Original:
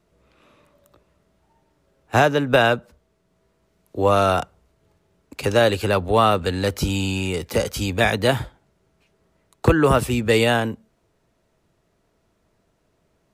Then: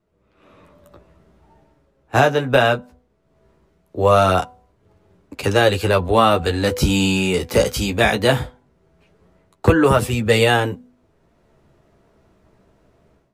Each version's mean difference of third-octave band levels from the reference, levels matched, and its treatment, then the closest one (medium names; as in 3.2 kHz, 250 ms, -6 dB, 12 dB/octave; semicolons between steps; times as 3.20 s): 2.0 dB: de-hum 248.5 Hz, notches 4; flange 0.2 Hz, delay 9.4 ms, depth 6.7 ms, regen -22%; level rider gain up to 15 dB; tape noise reduction on one side only decoder only; trim -1 dB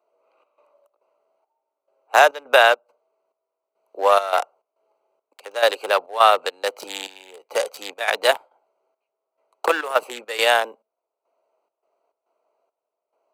12.0 dB: local Wiener filter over 25 samples; trance gate "xxx.xx.xxx..." 104 bpm -12 dB; high-pass 570 Hz 24 dB/octave; treble shelf 9.2 kHz +7.5 dB; trim +5 dB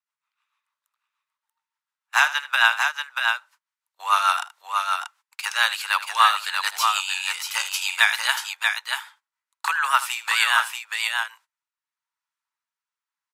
18.0 dB: Chebyshev high-pass 910 Hz, order 5; rotary cabinet horn 6.7 Hz, later 0.85 Hz, at 10.48 s; on a send: multi-tap echo 78/635 ms -15.5/-4.5 dB; on the sum: gate -56 dBFS, range -21 dB; trim +6.5 dB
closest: first